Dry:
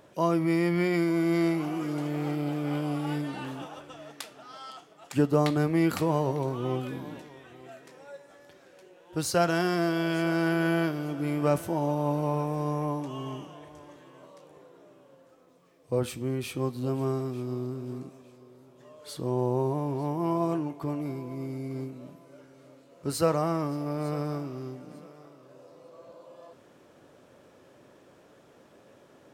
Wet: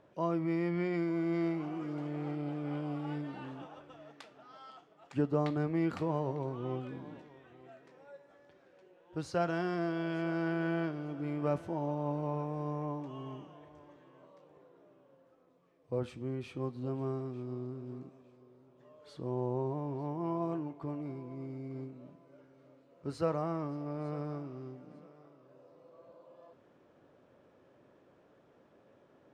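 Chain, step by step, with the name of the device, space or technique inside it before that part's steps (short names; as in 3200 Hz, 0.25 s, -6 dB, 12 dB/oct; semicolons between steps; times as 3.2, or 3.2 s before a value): through cloth (LPF 6900 Hz 12 dB/oct; high shelf 3600 Hz -12 dB); gain -7 dB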